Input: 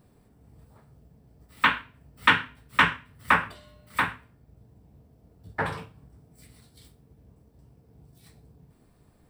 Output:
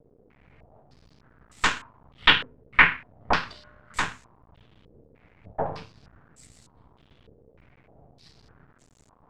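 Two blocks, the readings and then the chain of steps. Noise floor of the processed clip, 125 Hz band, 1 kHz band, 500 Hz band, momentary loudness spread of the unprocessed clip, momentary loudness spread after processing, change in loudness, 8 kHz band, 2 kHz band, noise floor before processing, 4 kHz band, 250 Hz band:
-61 dBFS, -1.5 dB, -1.5 dB, +3.5 dB, 16 LU, 19 LU, +1.5 dB, +7.0 dB, +1.0 dB, -61 dBFS, +5.5 dB, -1.5 dB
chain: partial rectifier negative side -12 dB; bit crusher 10-bit; step-sequenced low-pass 3.3 Hz 470–7200 Hz; trim +1 dB

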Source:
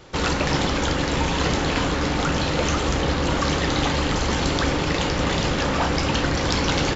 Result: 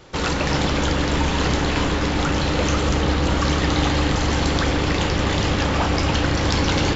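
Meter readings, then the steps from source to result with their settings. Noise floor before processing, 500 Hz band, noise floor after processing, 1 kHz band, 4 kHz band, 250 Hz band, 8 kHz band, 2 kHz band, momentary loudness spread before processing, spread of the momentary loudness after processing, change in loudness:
-24 dBFS, +0.5 dB, -22 dBFS, +0.5 dB, +0.5 dB, +2.0 dB, no reading, +1.0 dB, 1 LU, 1 LU, +1.5 dB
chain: on a send: bucket-brigade echo 140 ms, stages 4096, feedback 82%, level -10.5 dB

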